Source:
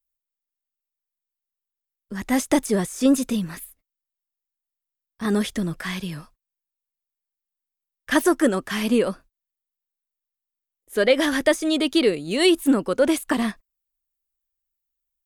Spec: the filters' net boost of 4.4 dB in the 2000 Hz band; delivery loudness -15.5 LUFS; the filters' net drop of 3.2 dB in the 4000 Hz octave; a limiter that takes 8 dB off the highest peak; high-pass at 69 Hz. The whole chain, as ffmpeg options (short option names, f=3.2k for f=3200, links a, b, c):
-af "highpass=69,equalizer=f=2k:t=o:g=7,equalizer=f=4k:t=o:g=-8,volume=7.5dB,alimiter=limit=-3.5dB:level=0:latency=1"